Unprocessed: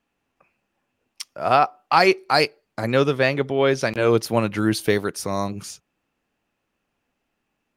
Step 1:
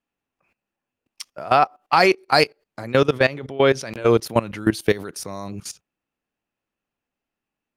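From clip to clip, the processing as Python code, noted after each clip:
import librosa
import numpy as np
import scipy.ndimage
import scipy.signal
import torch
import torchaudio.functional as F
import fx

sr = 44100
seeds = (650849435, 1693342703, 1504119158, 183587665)

y = fx.level_steps(x, sr, step_db=18)
y = F.gain(torch.from_numpy(y), 4.0).numpy()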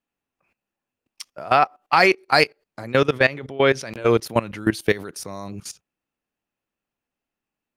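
y = fx.dynamic_eq(x, sr, hz=2000.0, q=1.4, threshold_db=-32.0, ratio=4.0, max_db=5)
y = F.gain(torch.from_numpy(y), -1.5).numpy()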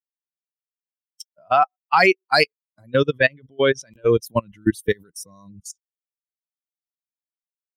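y = fx.bin_expand(x, sr, power=2.0)
y = F.gain(torch.from_numpy(y), 3.0).numpy()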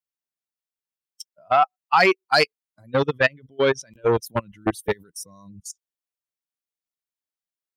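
y = fx.transformer_sat(x, sr, knee_hz=1200.0)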